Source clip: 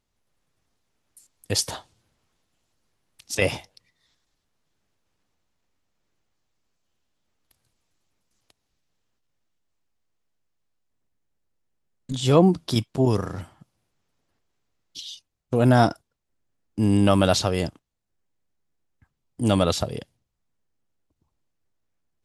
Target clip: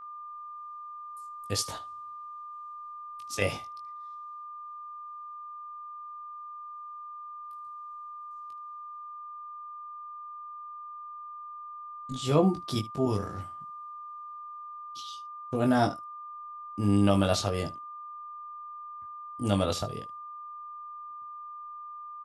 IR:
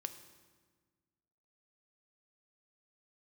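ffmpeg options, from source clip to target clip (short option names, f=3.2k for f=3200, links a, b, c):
-af "aeval=exprs='val(0)+0.0158*sin(2*PI*1200*n/s)':c=same,aecho=1:1:20|76:0.596|0.126,volume=-8dB"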